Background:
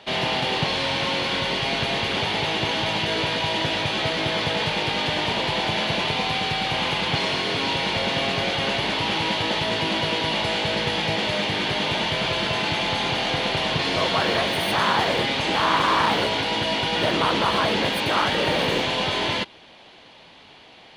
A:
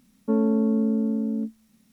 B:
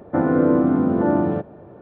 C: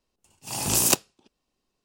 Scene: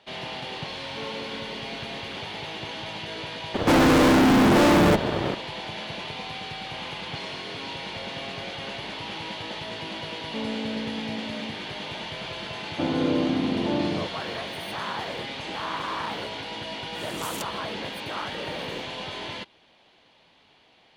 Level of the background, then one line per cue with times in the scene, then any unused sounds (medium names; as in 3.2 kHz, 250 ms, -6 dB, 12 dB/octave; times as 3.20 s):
background -11 dB
0.68 s: add A -5 dB + high-pass 630 Hz
3.54 s: add B -3 dB + fuzz box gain 37 dB, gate -46 dBFS
10.06 s: add A -10.5 dB
12.65 s: add B -6.5 dB + distance through air 470 m
16.48 s: add C -17.5 dB